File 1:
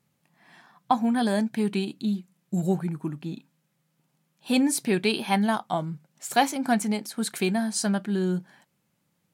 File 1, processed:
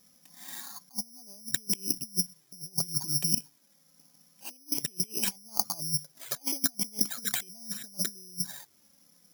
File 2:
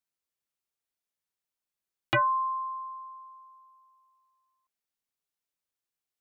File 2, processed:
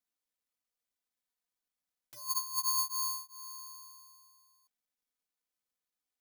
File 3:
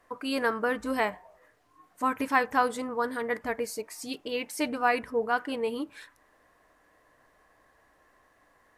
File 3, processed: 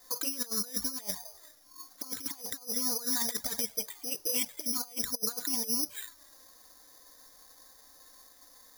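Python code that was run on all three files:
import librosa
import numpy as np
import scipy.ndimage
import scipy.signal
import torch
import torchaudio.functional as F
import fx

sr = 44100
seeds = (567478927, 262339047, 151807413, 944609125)

y = fx.env_flanger(x, sr, rest_ms=4.0, full_db=-22.0)
y = (np.kron(scipy.signal.resample_poly(y, 1, 8), np.eye(8)[0]) * 8)[:len(y)]
y = fx.over_compress(y, sr, threshold_db=-29.0, ratio=-0.5)
y = y * 10.0 ** (-4.0 / 20.0)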